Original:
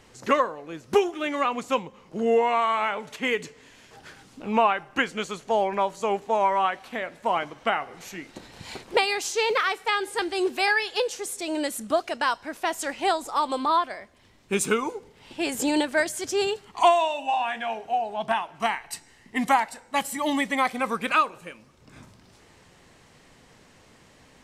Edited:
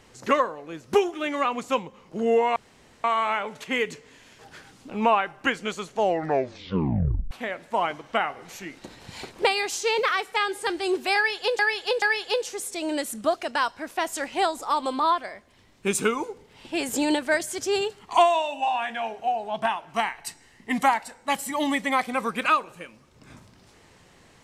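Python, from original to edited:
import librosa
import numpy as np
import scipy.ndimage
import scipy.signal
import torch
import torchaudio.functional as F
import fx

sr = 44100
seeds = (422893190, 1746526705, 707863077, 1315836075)

y = fx.edit(x, sr, fx.insert_room_tone(at_s=2.56, length_s=0.48),
    fx.tape_stop(start_s=5.49, length_s=1.34),
    fx.repeat(start_s=10.68, length_s=0.43, count=3), tone=tone)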